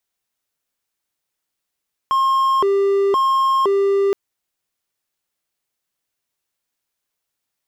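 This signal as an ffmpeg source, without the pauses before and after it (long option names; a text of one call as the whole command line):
ffmpeg -f lavfi -i "aevalsrc='0.266*(1-4*abs(mod((733*t+337/0.97*(0.5-abs(mod(0.97*t,1)-0.5)))+0.25,1)-0.5))':duration=2.02:sample_rate=44100" out.wav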